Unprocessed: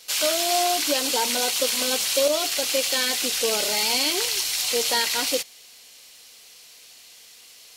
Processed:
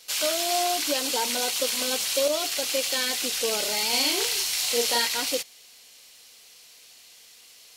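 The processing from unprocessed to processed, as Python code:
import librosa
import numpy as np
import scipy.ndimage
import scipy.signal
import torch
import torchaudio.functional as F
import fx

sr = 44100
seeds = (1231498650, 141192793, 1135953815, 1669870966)

y = fx.doubler(x, sr, ms=38.0, db=-3.0, at=(3.89, 5.07))
y = y * 10.0 ** (-3.0 / 20.0)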